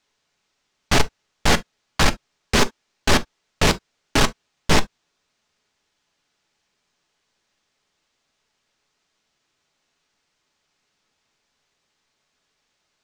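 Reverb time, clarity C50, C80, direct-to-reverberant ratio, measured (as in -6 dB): not exponential, 23.5 dB, 60.0 dB, 9.0 dB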